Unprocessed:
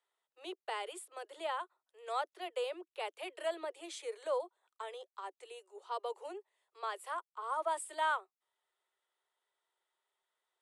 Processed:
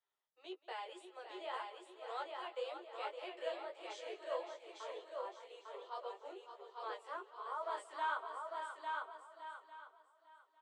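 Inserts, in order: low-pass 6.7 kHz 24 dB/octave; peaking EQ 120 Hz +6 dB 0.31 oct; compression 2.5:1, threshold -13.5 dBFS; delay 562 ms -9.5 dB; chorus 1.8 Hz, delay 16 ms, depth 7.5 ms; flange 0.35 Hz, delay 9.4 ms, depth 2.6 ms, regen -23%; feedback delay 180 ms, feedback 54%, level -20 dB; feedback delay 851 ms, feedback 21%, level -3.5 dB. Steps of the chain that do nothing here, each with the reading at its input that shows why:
peaking EQ 120 Hz: input has nothing below 290 Hz; compression, threshold -13.5 dBFS: peak at its input -23.5 dBFS

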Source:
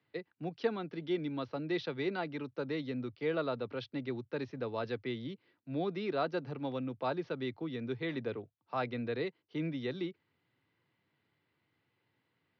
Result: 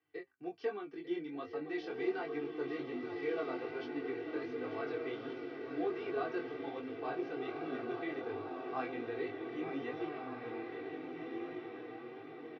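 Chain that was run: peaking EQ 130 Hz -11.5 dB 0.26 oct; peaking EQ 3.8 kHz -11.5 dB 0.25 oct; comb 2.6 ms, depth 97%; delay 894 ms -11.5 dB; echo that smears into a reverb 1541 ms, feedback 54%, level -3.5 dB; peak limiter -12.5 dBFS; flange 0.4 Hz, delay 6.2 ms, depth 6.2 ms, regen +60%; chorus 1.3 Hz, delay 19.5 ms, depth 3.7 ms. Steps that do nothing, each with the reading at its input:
peak limiter -12.5 dBFS: peak at its input -15.5 dBFS

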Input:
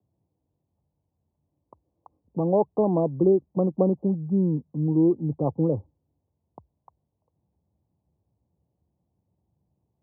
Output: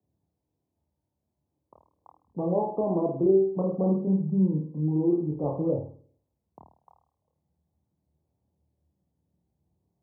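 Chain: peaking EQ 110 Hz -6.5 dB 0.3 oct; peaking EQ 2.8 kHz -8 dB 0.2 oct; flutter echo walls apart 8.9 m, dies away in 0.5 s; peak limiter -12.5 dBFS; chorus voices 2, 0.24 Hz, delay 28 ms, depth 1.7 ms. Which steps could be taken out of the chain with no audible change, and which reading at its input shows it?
peaking EQ 2.8 kHz: input has nothing above 910 Hz

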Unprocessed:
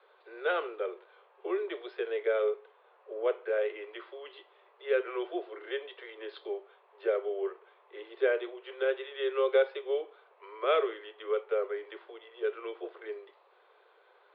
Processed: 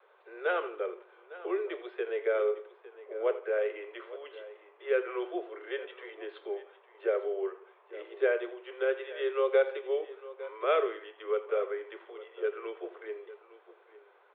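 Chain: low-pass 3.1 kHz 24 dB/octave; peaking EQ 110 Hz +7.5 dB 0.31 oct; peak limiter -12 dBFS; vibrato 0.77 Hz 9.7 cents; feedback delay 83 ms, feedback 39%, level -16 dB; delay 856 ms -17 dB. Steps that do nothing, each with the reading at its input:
peaking EQ 110 Hz: input has nothing below 300 Hz; peak limiter -12 dBFS: peak at its input -14.0 dBFS

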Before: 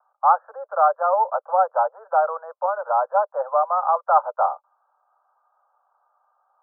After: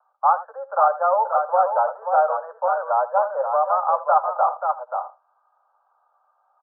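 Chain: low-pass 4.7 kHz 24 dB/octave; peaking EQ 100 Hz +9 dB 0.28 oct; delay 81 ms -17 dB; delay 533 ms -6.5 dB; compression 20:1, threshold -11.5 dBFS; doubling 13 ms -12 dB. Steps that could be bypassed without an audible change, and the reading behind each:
low-pass 4.7 kHz: input has nothing above 1.6 kHz; peaking EQ 100 Hz: input has nothing below 430 Hz

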